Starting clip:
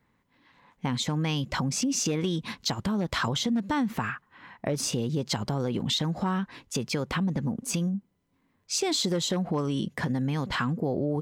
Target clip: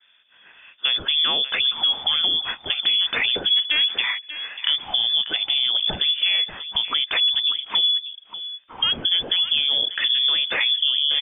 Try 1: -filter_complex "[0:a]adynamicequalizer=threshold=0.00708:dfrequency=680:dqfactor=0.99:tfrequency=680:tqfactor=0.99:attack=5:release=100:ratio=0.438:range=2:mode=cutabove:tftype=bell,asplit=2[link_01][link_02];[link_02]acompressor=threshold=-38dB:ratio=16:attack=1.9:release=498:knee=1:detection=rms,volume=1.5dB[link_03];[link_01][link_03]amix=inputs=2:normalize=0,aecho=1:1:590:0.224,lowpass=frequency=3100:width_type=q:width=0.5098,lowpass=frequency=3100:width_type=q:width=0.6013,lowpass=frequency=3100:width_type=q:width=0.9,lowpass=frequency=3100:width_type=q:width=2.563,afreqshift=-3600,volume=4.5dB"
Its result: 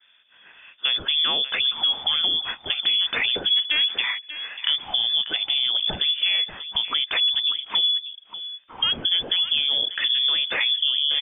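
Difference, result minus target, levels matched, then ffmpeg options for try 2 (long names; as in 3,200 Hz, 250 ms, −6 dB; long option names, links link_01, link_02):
downward compressor: peak gain reduction +6.5 dB
-filter_complex "[0:a]adynamicequalizer=threshold=0.00708:dfrequency=680:dqfactor=0.99:tfrequency=680:tqfactor=0.99:attack=5:release=100:ratio=0.438:range=2:mode=cutabove:tftype=bell,asplit=2[link_01][link_02];[link_02]acompressor=threshold=-31dB:ratio=16:attack=1.9:release=498:knee=1:detection=rms,volume=1.5dB[link_03];[link_01][link_03]amix=inputs=2:normalize=0,aecho=1:1:590:0.224,lowpass=frequency=3100:width_type=q:width=0.5098,lowpass=frequency=3100:width_type=q:width=0.6013,lowpass=frequency=3100:width_type=q:width=0.9,lowpass=frequency=3100:width_type=q:width=2.563,afreqshift=-3600,volume=4.5dB"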